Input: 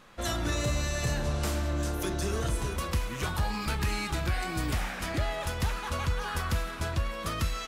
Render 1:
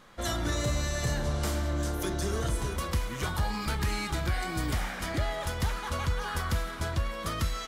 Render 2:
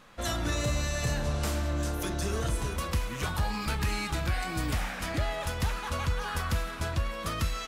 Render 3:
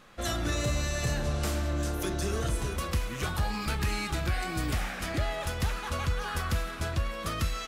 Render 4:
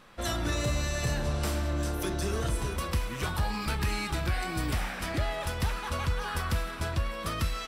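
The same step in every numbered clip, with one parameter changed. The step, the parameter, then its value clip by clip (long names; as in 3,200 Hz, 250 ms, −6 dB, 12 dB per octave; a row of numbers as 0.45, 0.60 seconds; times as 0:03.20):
notch filter, centre frequency: 2,600, 370, 950, 6,700 Hertz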